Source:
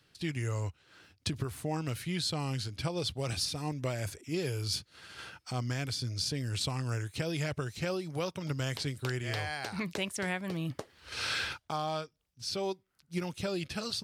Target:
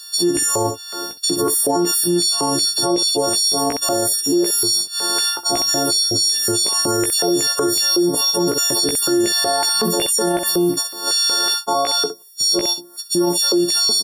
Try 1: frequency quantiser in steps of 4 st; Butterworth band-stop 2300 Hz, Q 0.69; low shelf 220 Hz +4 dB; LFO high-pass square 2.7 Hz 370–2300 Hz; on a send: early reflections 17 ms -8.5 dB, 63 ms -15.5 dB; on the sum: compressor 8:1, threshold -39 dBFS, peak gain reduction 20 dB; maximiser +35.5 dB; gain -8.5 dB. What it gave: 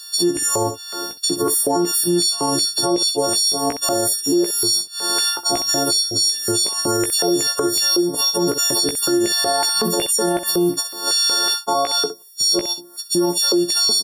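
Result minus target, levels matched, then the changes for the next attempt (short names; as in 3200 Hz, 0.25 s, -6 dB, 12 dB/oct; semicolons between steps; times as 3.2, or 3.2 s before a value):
compressor: peak gain reduction +6.5 dB
change: compressor 8:1, threshold -31.5 dBFS, peak gain reduction 13.5 dB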